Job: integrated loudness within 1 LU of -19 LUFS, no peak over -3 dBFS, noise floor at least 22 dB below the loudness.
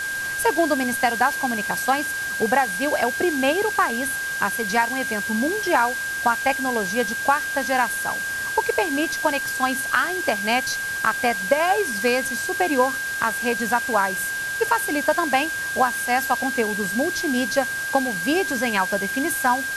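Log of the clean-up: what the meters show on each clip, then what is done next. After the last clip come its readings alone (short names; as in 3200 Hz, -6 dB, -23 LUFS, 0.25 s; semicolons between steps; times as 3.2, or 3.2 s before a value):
steady tone 1600 Hz; tone level -25 dBFS; noise floor -28 dBFS; noise floor target -44 dBFS; loudness -22.0 LUFS; peak -4.0 dBFS; loudness target -19.0 LUFS
-> notch 1600 Hz, Q 30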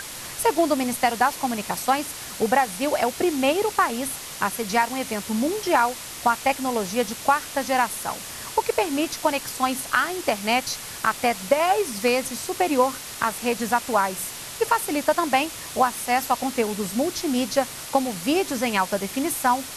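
steady tone none; noise floor -36 dBFS; noise floor target -46 dBFS
-> noise print and reduce 10 dB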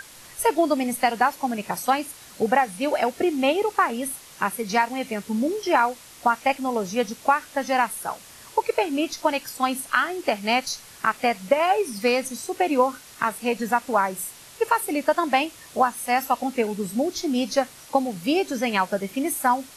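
noise floor -46 dBFS; loudness -24.0 LUFS; peak -5.0 dBFS; loudness target -19.0 LUFS
-> gain +5 dB; limiter -3 dBFS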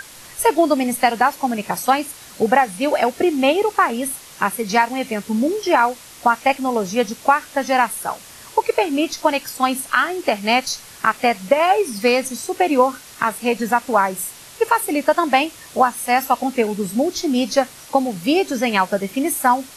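loudness -19.0 LUFS; peak -3.0 dBFS; noise floor -41 dBFS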